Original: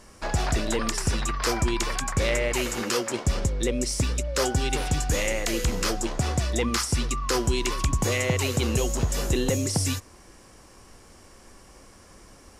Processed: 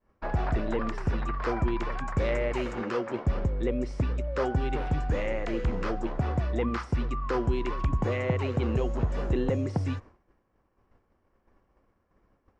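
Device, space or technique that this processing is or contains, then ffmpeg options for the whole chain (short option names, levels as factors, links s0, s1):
hearing-loss simulation: -filter_complex "[0:a]lowpass=1600,agate=range=0.0224:threshold=0.01:ratio=3:detection=peak,asettb=1/sr,asplit=3[s0][s1][s2];[s0]atrim=end=2.074[s3];[s1]atrim=start=2.07:end=2.73,asetpts=PTS-STARTPTS,afade=t=in:d=0.004:c=qsin,afade=t=out:st=0.656:d=0.004:c=qsin,bass=f=250:g=0,treble=f=4000:g=7[s4];[s2]atrim=start=2.726[s5];[s3][s4]acrossfade=d=0.004:c1=hsin:c2=qsin[s6];[s6][s5]acrossfade=d=0.004:c1=qsin:c2=hsin,volume=0.794"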